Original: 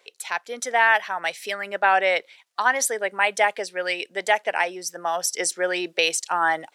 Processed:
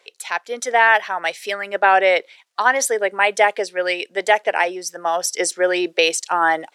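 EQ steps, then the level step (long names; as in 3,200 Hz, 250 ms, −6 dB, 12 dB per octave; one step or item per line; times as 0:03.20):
low-shelf EQ 140 Hz −8.5 dB
high-shelf EQ 12,000 Hz −7 dB
dynamic equaliser 390 Hz, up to +6 dB, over −36 dBFS, Q 1.1
+3.5 dB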